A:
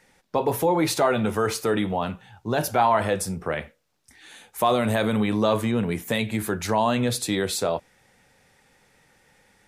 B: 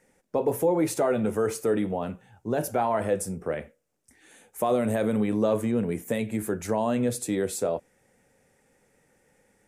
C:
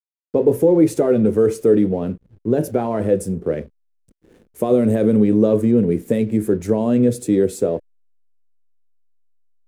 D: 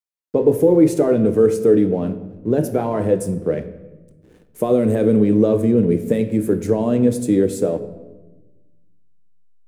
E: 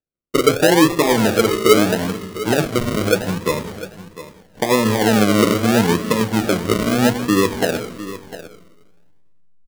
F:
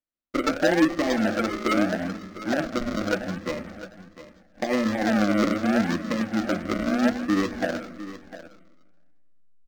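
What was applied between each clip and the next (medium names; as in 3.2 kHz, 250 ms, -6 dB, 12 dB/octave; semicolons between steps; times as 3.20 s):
graphic EQ 250/500/1000/4000/8000 Hz +4/+6/-4/-10/+5 dB; trim -6 dB
hysteresis with a dead band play -44.5 dBFS; resonant low shelf 580 Hz +9.5 dB, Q 1.5
simulated room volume 650 m³, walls mixed, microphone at 0.48 m
decimation with a swept rate 41×, swing 60% 0.78 Hz; delay 702 ms -14.5 dB
static phaser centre 640 Hz, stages 8; decimation joined by straight lines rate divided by 4×; trim -4.5 dB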